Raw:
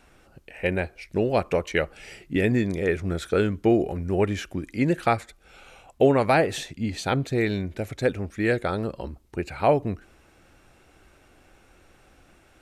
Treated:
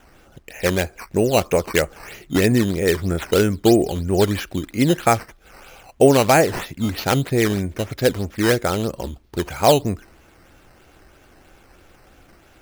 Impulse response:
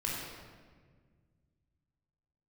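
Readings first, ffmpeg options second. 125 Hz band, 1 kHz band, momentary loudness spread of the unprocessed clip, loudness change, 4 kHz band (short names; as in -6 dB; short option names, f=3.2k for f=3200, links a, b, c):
+5.5 dB, +5.5 dB, 11 LU, +5.5 dB, +10.5 dB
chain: -af "acrusher=samples=9:mix=1:aa=0.000001:lfo=1:lforange=9:lforate=3.1,volume=5.5dB"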